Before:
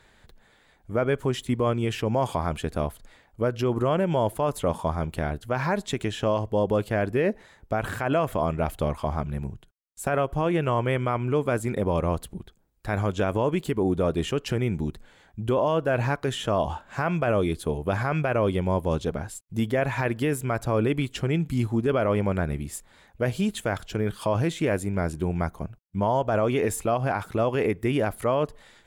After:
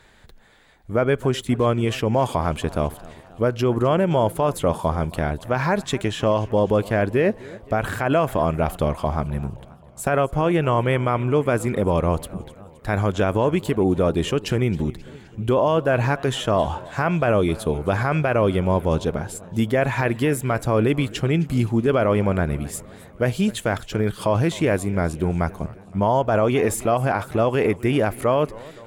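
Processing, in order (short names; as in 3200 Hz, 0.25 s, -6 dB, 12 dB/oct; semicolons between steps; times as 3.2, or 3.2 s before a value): warbling echo 0.263 s, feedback 60%, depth 179 cents, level -20.5 dB; gain +4.5 dB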